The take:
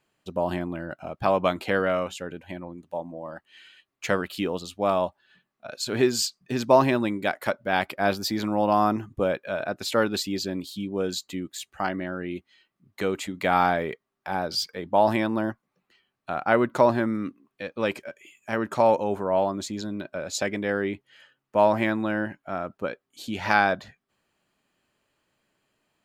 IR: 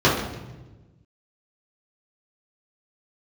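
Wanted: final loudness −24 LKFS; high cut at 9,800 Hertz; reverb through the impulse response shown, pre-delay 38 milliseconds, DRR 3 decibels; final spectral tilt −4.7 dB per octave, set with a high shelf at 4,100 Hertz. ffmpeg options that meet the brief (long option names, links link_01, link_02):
-filter_complex "[0:a]lowpass=9800,highshelf=frequency=4100:gain=8,asplit=2[link_01][link_02];[1:a]atrim=start_sample=2205,adelay=38[link_03];[link_02][link_03]afir=irnorm=-1:irlink=0,volume=-25dB[link_04];[link_01][link_04]amix=inputs=2:normalize=0,volume=-1dB"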